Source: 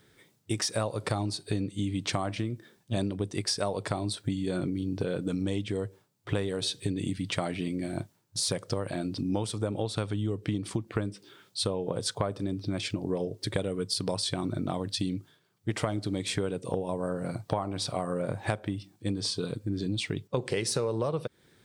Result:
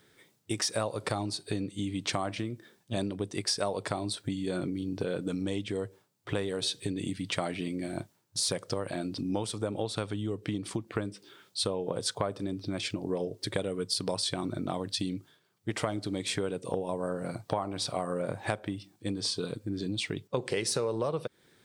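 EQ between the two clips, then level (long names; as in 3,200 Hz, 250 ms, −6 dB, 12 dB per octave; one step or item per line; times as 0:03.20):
low-shelf EQ 140 Hz −8.5 dB
0.0 dB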